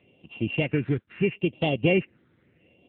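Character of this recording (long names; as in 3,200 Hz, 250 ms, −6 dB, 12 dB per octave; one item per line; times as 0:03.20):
a buzz of ramps at a fixed pitch in blocks of 16 samples
phaser sweep stages 6, 0.76 Hz, lowest notch 730–1,600 Hz
AMR narrowband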